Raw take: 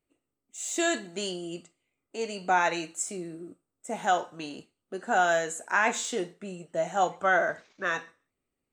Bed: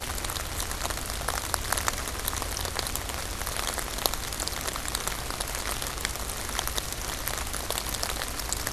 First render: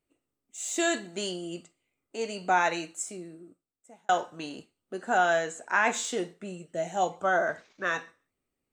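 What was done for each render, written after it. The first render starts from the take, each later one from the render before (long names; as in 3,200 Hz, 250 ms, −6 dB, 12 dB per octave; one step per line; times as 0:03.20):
0:02.63–0:04.09: fade out
0:05.17–0:05.85: low-pass filter 5,900 Hz
0:06.57–0:07.45: parametric band 740 Hz → 2,700 Hz −11 dB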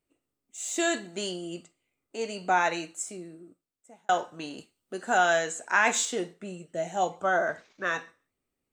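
0:04.58–0:06.05: high-shelf EQ 2,500 Hz +7 dB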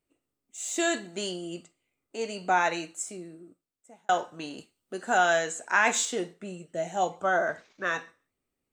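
no processing that can be heard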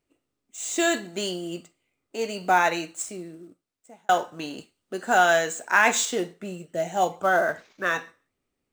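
running median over 3 samples
in parallel at −4.5 dB: floating-point word with a short mantissa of 2 bits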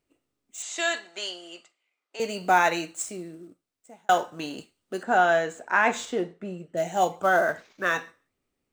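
0:00.62–0:02.20: band-pass filter 770–5,700 Hz
0:05.03–0:06.77: low-pass filter 1,500 Hz 6 dB per octave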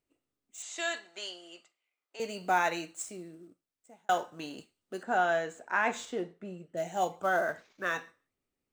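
level −7 dB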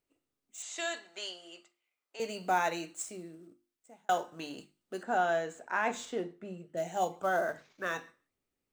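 dynamic equaliser 1,900 Hz, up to −4 dB, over −38 dBFS, Q 0.71
mains-hum notches 50/100/150/200/250/300/350 Hz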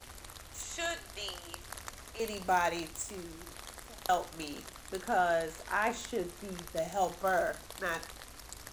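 mix in bed −17 dB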